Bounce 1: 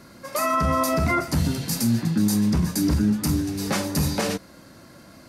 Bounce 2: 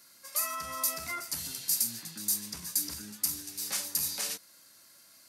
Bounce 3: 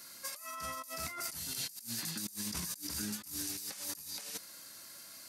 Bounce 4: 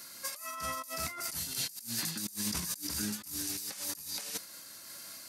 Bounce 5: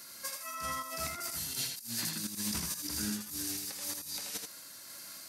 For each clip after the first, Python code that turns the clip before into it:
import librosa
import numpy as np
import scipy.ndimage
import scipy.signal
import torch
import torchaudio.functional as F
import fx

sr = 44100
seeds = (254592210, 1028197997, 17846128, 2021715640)

y1 = F.preemphasis(torch.from_numpy(x), 0.97).numpy()
y2 = fx.over_compress(y1, sr, threshold_db=-43.0, ratio=-1.0)
y3 = fx.am_noise(y2, sr, seeds[0], hz=5.7, depth_pct=55)
y3 = y3 * librosa.db_to_amplitude(6.0)
y4 = y3 + 10.0 ** (-5.0 / 20.0) * np.pad(y3, (int(81 * sr / 1000.0), 0))[:len(y3)]
y4 = y4 * librosa.db_to_amplitude(-1.5)